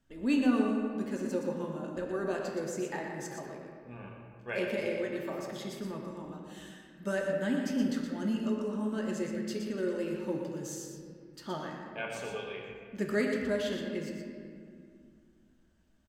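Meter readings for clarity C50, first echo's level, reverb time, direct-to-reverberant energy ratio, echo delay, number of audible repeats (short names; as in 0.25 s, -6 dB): 1.0 dB, -6.5 dB, 2.2 s, -0.5 dB, 0.12 s, 1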